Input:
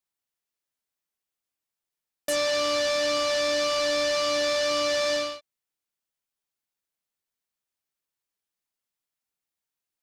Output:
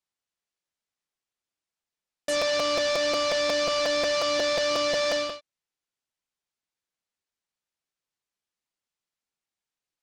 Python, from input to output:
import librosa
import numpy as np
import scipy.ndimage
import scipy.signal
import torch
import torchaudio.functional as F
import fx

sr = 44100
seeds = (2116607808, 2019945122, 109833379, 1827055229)

y = scipy.signal.sosfilt(scipy.signal.butter(2, 7800.0, 'lowpass', fs=sr, output='sos'), x)
y = fx.buffer_crackle(y, sr, first_s=0.61, period_s=0.18, block=256, kind='repeat')